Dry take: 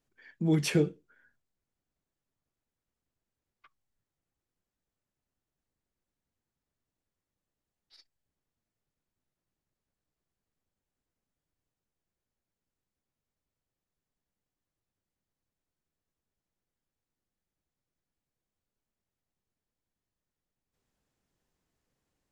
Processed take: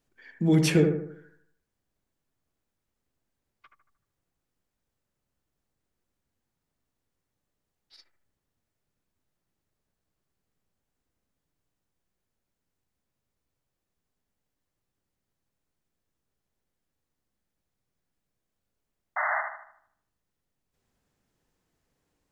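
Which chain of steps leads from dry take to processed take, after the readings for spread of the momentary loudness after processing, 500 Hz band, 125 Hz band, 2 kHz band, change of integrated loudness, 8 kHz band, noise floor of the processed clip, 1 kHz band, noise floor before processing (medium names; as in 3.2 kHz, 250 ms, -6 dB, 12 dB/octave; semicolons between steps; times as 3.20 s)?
16 LU, +6.0 dB, +5.5 dB, +11.5 dB, +3.0 dB, +4.0 dB, -84 dBFS, +18.0 dB, under -85 dBFS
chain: painted sound noise, 19.16–19.41 s, 580–2100 Hz -32 dBFS; bucket-brigade echo 76 ms, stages 1024, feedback 45%, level -5.5 dB; trim +4 dB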